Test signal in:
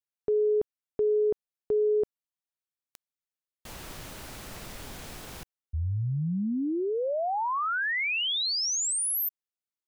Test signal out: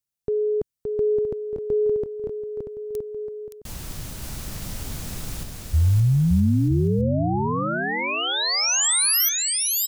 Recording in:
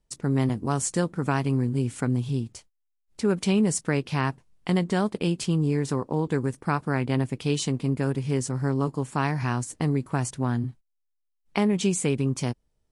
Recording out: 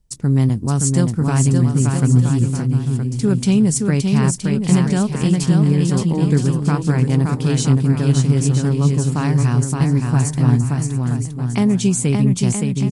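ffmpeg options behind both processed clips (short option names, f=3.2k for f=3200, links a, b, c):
-af "bass=f=250:g=12,treble=f=4k:g=8,aecho=1:1:570|969|1248|1444|1581:0.631|0.398|0.251|0.158|0.1"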